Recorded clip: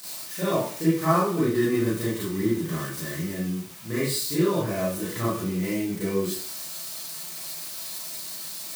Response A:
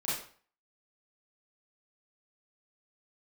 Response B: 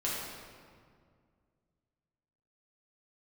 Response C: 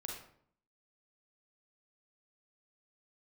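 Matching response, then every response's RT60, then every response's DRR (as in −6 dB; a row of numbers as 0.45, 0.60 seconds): A; 0.45, 2.0, 0.60 seconds; −10.0, −7.5, −1.0 decibels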